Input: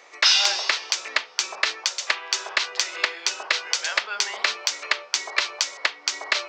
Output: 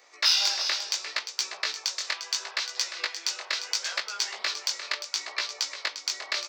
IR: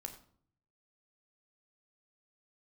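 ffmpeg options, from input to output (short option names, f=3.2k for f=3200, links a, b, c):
-filter_complex "[0:a]asettb=1/sr,asplit=3[a][b][c];[a]atrim=end=1.744[d];[b]atrim=start=1.74:end=3.51,asetpts=PTS-STARTPTS,afade=t=in:d=0.004:c=qsin,afade=t=out:st=1.766:d=0.004:c=qsin,highpass=f=330:p=1[e];[c]atrim=start=3.506[f];[d][e]acrossfade=d=0.004:c1=hsin:c2=qsin[g];[g][f]acrossfade=d=0.004:c1=qsin:c2=hsin,asettb=1/sr,asplit=3[h][i][j];[h]atrim=end=5.044[k];[i]atrim=start=5.04:end=5.71,asetpts=PTS-STARTPTS,afade=t=in:d=0.004:c=qsin,afade=t=out:st=0.666:d=0.004:c=qsin,highshelf=f=12k:g=-11[l];[j]atrim=start=5.706[m];[k][l]acrossfade=d=0.004:c1=hsin:c2=qsin[n];[n][m]acrossfade=d=0.004:c1=qsin:c2=hsin,aecho=1:1:350:0.299,flanger=delay=15.5:depth=6.4:speed=0.73,aexciter=amount=1.5:drive=7.9:freq=4.1k,volume=-5.5dB"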